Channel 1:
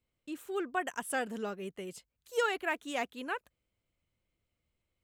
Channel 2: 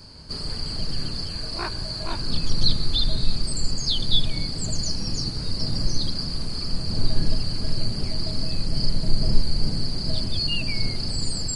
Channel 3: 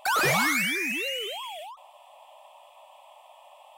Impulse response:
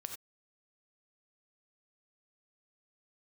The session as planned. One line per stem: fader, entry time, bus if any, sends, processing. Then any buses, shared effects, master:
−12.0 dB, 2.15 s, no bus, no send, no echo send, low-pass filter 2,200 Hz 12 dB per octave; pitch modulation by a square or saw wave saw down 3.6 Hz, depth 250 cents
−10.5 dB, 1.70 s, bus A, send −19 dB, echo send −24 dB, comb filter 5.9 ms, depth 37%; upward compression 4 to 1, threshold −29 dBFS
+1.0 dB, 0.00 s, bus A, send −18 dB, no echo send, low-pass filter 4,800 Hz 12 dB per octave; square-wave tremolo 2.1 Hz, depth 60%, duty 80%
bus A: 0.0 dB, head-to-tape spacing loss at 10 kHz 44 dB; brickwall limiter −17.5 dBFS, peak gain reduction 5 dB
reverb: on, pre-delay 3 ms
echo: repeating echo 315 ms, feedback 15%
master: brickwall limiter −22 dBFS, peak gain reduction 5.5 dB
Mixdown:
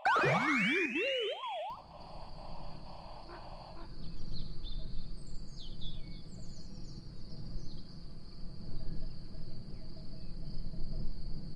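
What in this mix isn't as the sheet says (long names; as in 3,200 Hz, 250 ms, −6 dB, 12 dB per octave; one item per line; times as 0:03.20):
stem 1: muted
stem 2 −10.5 dB → −19.5 dB
reverb return +9.5 dB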